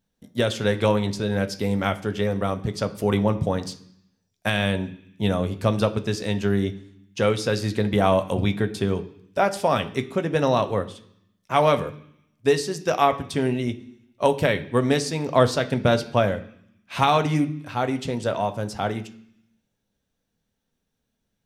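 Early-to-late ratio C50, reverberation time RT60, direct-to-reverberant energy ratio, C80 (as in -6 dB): 15.5 dB, 0.70 s, 7.5 dB, 18.0 dB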